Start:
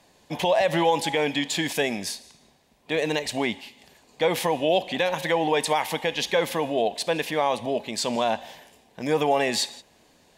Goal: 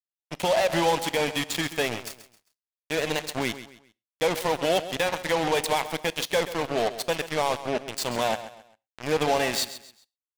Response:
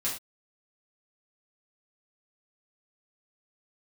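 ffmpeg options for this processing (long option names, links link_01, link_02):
-filter_complex "[0:a]acrusher=bits=3:mix=0:aa=0.5,aecho=1:1:133|266|399:0.211|0.0697|0.023,asplit=2[link_01][link_02];[1:a]atrim=start_sample=2205[link_03];[link_02][link_03]afir=irnorm=-1:irlink=0,volume=-24dB[link_04];[link_01][link_04]amix=inputs=2:normalize=0,volume=-2.5dB"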